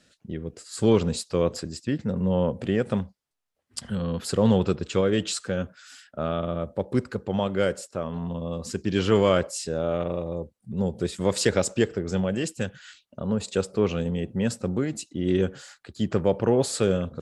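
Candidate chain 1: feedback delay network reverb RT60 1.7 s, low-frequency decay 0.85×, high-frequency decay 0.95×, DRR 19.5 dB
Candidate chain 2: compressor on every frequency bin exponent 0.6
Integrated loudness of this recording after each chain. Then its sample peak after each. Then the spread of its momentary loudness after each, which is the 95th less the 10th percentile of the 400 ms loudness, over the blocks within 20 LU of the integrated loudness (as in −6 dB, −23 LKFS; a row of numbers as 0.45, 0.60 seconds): −26.5, −22.5 LKFS; −6.5, −3.5 dBFS; 12, 9 LU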